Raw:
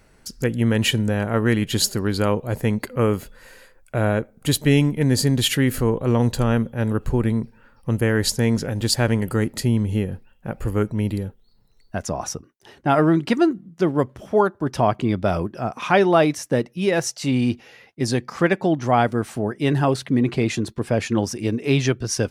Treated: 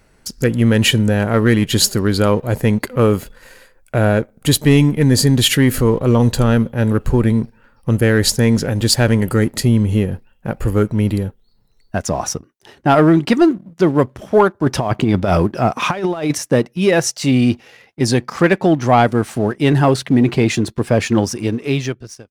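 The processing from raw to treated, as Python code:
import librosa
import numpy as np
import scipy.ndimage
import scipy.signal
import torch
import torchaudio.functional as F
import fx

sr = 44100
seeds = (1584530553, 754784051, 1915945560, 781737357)

y = fx.fade_out_tail(x, sr, length_s=1.17)
y = fx.over_compress(y, sr, threshold_db=-21.0, ratio=-0.5, at=(14.64, 16.38))
y = fx.leveller(y, sr, passes=1)
y = y * 10.0 ** (3.0 / 20.0)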